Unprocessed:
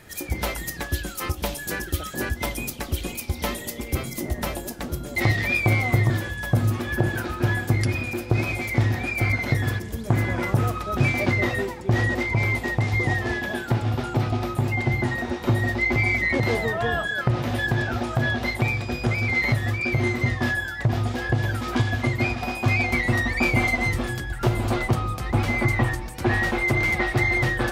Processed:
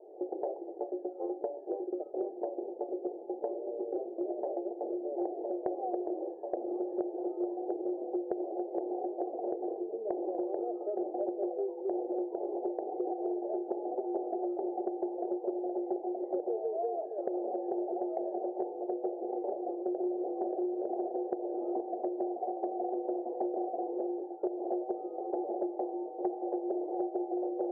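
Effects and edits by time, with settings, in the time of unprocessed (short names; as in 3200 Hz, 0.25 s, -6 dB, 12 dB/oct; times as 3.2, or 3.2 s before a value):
19.52–20.53 echo throw 0.58 s, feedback 35%, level -0.5 dB
whole clip: Chebyshev band-pass 350–800 Hz, order 4; tilt -4 dB/oct; compressor 6:1, threshold -31 dBFS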